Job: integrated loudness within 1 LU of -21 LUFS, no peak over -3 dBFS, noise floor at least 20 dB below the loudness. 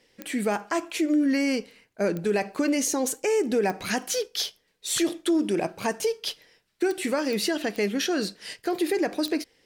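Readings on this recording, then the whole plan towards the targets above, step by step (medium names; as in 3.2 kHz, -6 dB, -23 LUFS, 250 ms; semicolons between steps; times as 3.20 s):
clicks found 7; loudness -26.5 LUFS; peak level -14.5 dBFS; loudness target -21.0 LUFS
-> de-click; trim +5.5 dB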